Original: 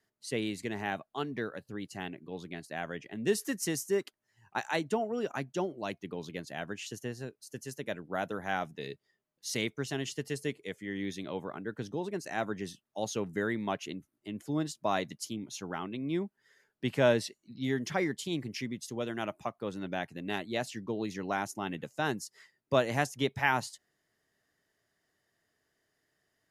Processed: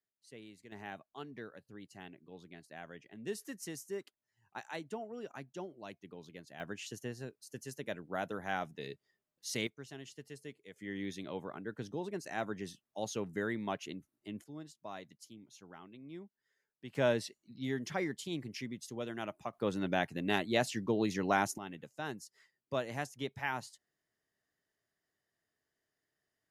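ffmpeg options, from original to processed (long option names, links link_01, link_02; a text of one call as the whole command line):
ffmpeg -i in.wav -af "asetnsamples=nb_out_samples=441:pad=0,asendcmd='0.72 volume volume -11dB;6.6 volume volume -3.5dB;9.67 volume volume -13.5dB;10.76 volume volume -4dB;14.44 volume volume -15.5dB;16.95 volume volume -5dB;19.53 volume volume 3dB;21.58 volume volume -9dB',volume=-19dB" out.wav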